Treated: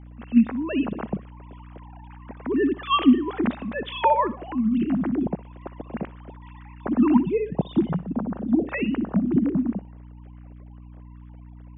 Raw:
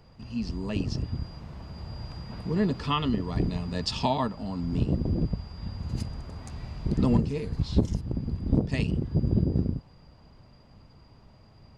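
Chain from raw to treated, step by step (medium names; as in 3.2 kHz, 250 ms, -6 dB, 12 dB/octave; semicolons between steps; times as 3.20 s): formants replaced by sine waves; hum 60 Hz, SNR 18 dB; thinning echo 61 ms, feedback 42%, high-pass 340 Hz, level -17 dB; trim +4 dB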